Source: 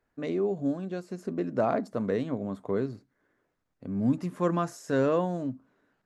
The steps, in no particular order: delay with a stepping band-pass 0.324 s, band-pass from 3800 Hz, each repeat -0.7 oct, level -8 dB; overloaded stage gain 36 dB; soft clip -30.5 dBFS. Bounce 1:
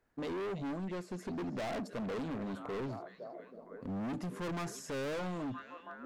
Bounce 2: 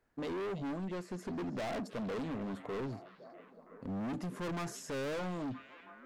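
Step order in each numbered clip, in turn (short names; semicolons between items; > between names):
delay with a stepping band-pass > soft clip > overloaded stage; soft clip > delay with a stepping band-pass > overloaded stage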